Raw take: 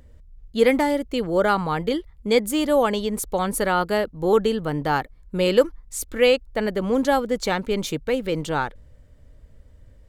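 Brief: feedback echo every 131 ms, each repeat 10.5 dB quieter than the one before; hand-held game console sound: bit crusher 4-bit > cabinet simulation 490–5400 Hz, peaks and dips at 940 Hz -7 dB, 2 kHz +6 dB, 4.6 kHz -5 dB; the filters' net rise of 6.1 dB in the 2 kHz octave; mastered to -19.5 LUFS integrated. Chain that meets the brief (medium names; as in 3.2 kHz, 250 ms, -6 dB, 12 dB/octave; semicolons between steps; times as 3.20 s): peaking EQ 2 kHz +4.5 dB; feedback delay 131 ms, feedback 30%, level -10.5 dB; bit crusher 4-bit; cabinet simulation 490–5400 Hz, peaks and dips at 940 Hz -7 dB, 2 kHz +6 dB, 4.6 kHz -5 dB; trim +3 dB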